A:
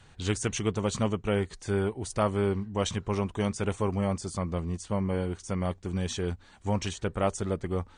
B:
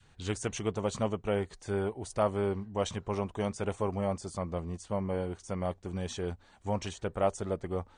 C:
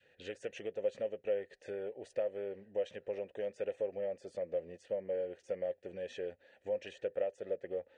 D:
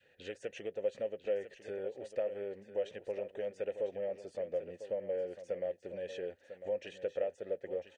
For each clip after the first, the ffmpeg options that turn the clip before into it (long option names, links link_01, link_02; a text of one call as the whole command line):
ffmpeg -i in.wav -af "adynamicequalizer=threshold=0.00708:dfrequency=660:dqfactor=1.1:tfrequency=660:tqfactor=1.1:attack=5:release=100:ratio=0.375:range=3.5:mode=boostabove:tftype=bell,volume=-6dB" out.wav
ffmpeg -i in.wav -filter_complex "[0:a]acompressor=threshold=-35dB:ratio=6,asplit=3[link_01][link_02][link_03];[link_01]bandpass=frequency=530:width_type=q:width=8,volume=0dB[link_04];[link_02]bandpass=frequency=1840:width_type=q:width=8,volume=-6dB[link_05];[link_03]bandpass=frequency=2480:width_type=q:width=8,volume=-9dB[link_06];[link_04][link_05][link_06]amix=inputs=3:normalize=0,volume=10.5dB" out.wav
ffmpeg -i in.wav -af "aecho=1:1:999:0.266" out.wav